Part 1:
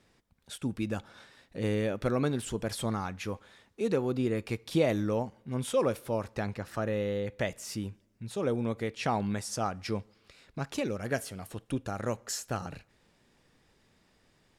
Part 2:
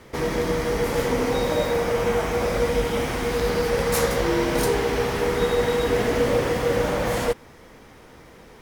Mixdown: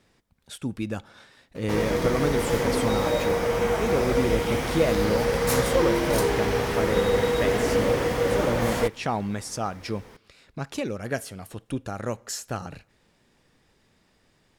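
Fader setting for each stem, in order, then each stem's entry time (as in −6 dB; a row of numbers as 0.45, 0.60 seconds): +2.5, −1.5 decibels; 0.00, 1.55 seconds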